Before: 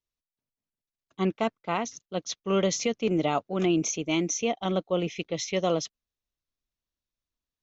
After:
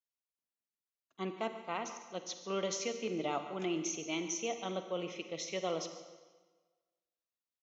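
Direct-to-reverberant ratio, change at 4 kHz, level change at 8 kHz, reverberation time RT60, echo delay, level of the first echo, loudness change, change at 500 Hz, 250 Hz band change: 7.5 dB, -8.0 dB, no reading, 1.4 s, 144 ms, -15.5 dB, -10.0 dB, -9.5 dB, -12.0 dB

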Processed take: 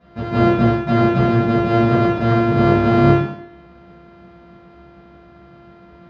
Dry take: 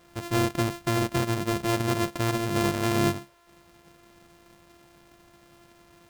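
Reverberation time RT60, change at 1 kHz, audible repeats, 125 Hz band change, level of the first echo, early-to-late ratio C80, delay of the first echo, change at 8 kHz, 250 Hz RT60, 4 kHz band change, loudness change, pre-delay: 0.70 s, +10.5 dB, no echo, +12.0 dB, no echo, 4.5 dB, no echo, under -15 dB, 0.80 s, +0.5 dB, +11.0 dB, 3 ms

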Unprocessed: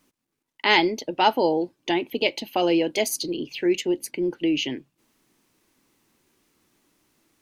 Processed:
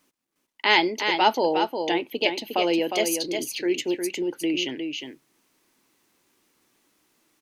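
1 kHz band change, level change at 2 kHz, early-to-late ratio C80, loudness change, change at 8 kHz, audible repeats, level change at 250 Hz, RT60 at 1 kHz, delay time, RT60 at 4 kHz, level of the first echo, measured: +0.5 dB, +1.0 dB, no reverb, -0.5 dB, +1.0 dB, 1, -2.0 dB, no reverb, 358 ms, no reverb, -6.0 dB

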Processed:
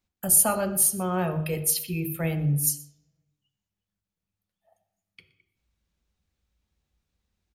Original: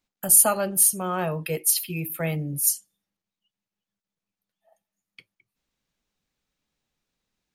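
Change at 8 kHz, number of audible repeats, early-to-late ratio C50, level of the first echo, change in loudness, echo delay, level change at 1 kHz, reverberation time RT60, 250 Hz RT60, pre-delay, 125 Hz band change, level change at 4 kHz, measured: -3.0 dB, 1, 11.5 dB, -20.0 dB, -2.5 dB, 121 ms, -2.0 dB, 0.70 s, 0.70 s, 3 ms, +4.0 dB, -3.0 dB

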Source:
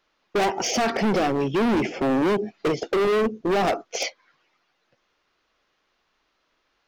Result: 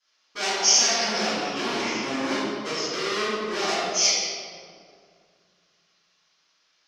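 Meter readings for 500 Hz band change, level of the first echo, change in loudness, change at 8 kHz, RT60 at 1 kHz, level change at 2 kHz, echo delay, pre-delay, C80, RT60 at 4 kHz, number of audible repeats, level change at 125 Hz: -6.5 dB, no echo, +0.5 dB, +11.5 dB, 2.0 s, +1.5 dB, no echo, 4 ms, -1.0 dB, 1.3 s, no echo, -11.0 dB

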